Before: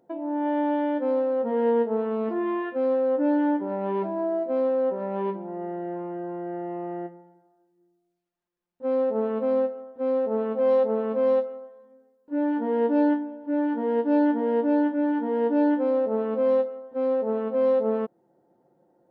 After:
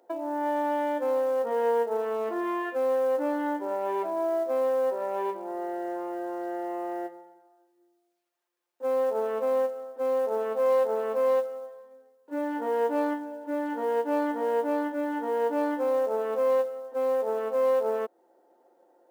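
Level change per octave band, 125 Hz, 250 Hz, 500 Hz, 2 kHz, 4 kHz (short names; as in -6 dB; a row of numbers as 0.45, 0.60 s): under -15 dB, -8.5 dB, -1.5 dB, +1.0 dB, n/a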